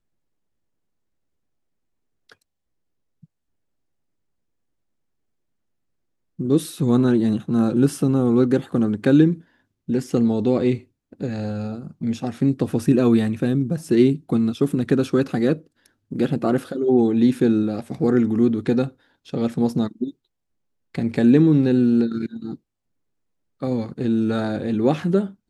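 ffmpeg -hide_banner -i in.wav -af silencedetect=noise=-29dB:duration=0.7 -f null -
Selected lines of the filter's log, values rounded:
silence_start: 0.00
silence_end: 6.39 | silence_duration: 6.39
silence_start: 20.10
silence_end: 20.95 | silence_duration: 0.85
silence_start: 22.54
silence_end: 23.62 | silence_duration: 1.08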